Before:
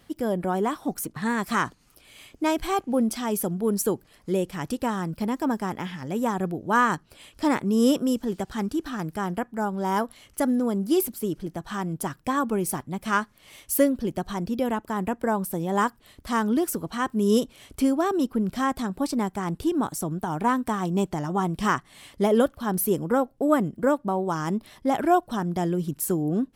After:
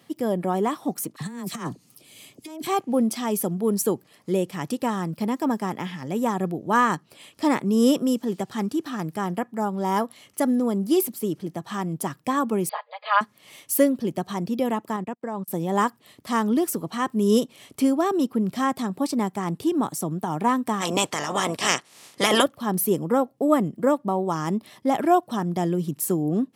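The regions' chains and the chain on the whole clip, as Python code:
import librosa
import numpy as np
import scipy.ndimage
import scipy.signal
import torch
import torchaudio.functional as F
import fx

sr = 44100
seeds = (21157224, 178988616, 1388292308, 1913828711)

y = fx.chain(x, sr, fx.peak_eq(hz=1400.0, db=-10.5, octaves=2.6),
    fx.dispersion(late='lows', ms=44.0, hz=1200.0),
    fx.over_compress(threshold_db=-32.0, ratio=-0.5), at=(1.16, 2.67))
y = fx.chain(y, sr, fx.brickwall_bandpass(low_hz=460.0, high_hz=4900.0),
    fx.comb(ms=4.8, depth=0.97), at=(12.69, 13.21))
y = fx.chain(y, sr, fx.lowpass(hz=7400.0, slope=12),
    fx.level_steps(step_db=15),
    fx.upward_expand(threshold_db=-49.0, expansion=2.5), at=(14.96, 15.48))
y = fx.spec_clip(y, sr, under_db=27, at=(20.8, 22.42), fade=0.02)
y = fx.lowpass(y, sr, hz=9900.0, slope=12, at=(20.8, 22.42), fade=0.02)
y = scipy.signal.sosfilt(scipy.signal.butter(4, 120.0, 'highpass', fs=sr, output='sos'), y)
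y = fx.notch(y, sr, hz=1500.0, q=8.7)
y = y * 10.0 ** (1.5 / 20.0)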